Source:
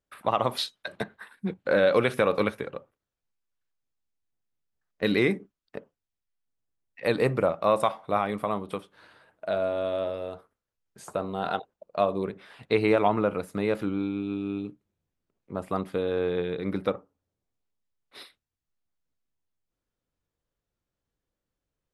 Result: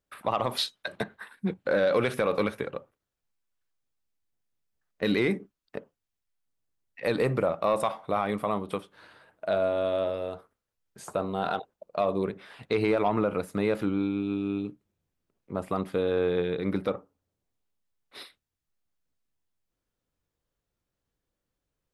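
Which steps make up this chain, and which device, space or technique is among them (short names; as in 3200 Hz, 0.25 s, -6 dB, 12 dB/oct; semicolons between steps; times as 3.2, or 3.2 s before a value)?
soft clipper into limiter (soft clip -10.5 dBFS, distortion -23 dB; limiter -17 dBFS, peak gain reduction 4.5 dB); gain +1.5 dB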